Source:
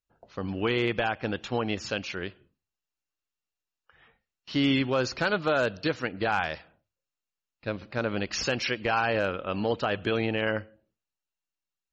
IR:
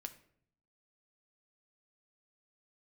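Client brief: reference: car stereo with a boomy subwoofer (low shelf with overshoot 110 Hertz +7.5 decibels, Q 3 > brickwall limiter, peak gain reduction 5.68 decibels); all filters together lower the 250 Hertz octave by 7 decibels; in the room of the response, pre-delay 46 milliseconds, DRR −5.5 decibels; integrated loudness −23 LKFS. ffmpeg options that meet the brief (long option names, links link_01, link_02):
-filter_complex "[0:a]equalizer=frequency=250:width_type=o:gain=-7,asplit=2[link_01][link_02];[1:a]atrim=start_sample=2205,adelay=46[link_03];[link_02][link_03]afir=irnorm=-1:irlink=0,volume=9.5dB[link_04];[link_01][link_04]amix=inputs=2:normalize=0,lowshelf=frequency=110:width_type=q:width=3:gain=7.5,volume=2dB,alimiter=limit=-11.5dB:level=0:latency=1"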